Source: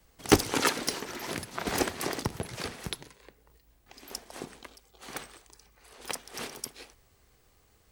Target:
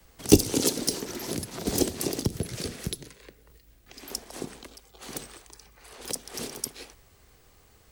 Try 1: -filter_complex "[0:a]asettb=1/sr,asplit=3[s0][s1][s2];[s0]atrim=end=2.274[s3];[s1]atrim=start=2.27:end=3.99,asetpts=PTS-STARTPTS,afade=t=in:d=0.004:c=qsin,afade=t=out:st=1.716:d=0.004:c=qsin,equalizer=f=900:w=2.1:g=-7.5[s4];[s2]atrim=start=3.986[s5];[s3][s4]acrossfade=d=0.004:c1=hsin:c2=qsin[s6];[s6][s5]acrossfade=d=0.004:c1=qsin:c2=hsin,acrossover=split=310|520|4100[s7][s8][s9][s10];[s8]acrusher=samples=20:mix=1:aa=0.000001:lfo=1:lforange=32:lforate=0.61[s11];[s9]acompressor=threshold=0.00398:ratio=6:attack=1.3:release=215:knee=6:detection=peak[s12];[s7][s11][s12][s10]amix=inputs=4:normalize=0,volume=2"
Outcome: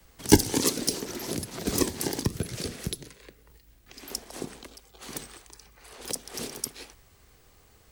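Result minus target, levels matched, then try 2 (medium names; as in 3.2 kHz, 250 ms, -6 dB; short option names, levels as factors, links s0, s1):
decimation with a swept rate: distortion +11 dB
-filter_complex "[0:a]asettb=1/sr,asplit=3[s0][s1][s2];[s0]atrim=end=2.274[s3];[s1]atrim=start=2.27:end=3.99,asetpts=PTS-STARTPTS,afade=t=in:d=0.004:c=qsin,afade=t=out:st=1.716:d=0.004:c=qsin,equalizer=f=900:w=2.1:g=-7.5[s4];[s2]atrim=start=3.986[s5];[s3][s4]acrossfade=d=0.004:c1=hsin:c2=qsin[s6];[s6][s5]acrossfade=d=0.004:c1=qsin:c2=hsin,acrossover=split=310|520|4100[s7][s8][s9][s10];[s8]acrusher=samples=8:mix=1:aa=0.000001:lfo=1:lforange=12.8:lforate=0.61[s11];[s9]acompressor=threshold=0.00398:ratio=6:attack=1.3:release=215:knee=6:detection=peak[s12];[s7][s11][s12][s10]amix=inputs=4:normalize=0,volume=2"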